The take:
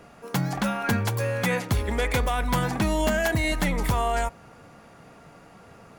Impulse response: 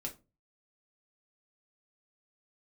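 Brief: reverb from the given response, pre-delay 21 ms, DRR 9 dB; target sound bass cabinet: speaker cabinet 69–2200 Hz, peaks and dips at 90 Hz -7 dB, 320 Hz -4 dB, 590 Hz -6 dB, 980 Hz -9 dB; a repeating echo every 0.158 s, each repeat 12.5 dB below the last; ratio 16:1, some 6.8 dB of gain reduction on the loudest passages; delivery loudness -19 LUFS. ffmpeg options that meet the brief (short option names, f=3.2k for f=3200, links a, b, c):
-filter_complex "[0:a]acompressor=threshold=-26dB:ratio=16,aecho=1:1:158|316|474:0.237|0.0569|0.0137,asplit=2[a][b];[1:a]atrim=start_sample=2205,adelay=21[c];[b][c]afir=irnorm=-1:irlink=0,volume=-8dB[d];[a][d]amix=inputs=2:normalize=0,highpass=f=69:w=0.5412,highpass=f=69:w=1.3066,equalizer=f=90:t=q:w=4:g=-7,equalizer=f=320:t=q:w=4:g=-4,equalizer=f=590:t=q:w=4:g=-6,equalizer=f=980:t=q:w=4:g=-9,lowpass=f=2.2k:w=0.5412,lowpass=f=2.2k:w=1.3066,volume=13.5dB"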